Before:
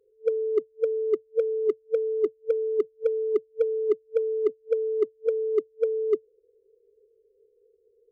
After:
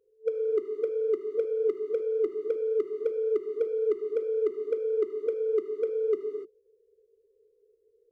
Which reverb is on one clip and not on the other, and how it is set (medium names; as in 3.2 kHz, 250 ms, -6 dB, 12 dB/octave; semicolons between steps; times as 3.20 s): gated-style reverb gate 320 ms flat, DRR 3 dB; trim -4 dB